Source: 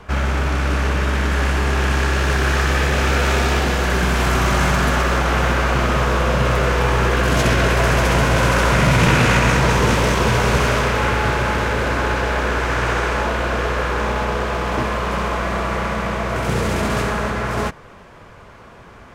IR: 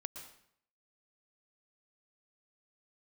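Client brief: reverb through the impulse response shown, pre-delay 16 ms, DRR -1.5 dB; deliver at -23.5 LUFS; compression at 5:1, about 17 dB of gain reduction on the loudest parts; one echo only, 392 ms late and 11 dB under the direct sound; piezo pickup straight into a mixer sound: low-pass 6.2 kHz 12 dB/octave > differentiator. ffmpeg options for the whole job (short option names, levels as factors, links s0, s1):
-filter_complex "[0:a]acompressor=threshold=0.0282:ratio=5,aecho=1:1:392:0.282,asplit=2[s0][s1];[1:a]atrim=start_sample=2205,adelay=16[s2];[s1][s2]afir=irnorm=-1:irlink=0,volume=1.58[s3];[s0][s3]amix=inputs=2:normalize=0,lowpass=6200,aderivative,volume=9.44"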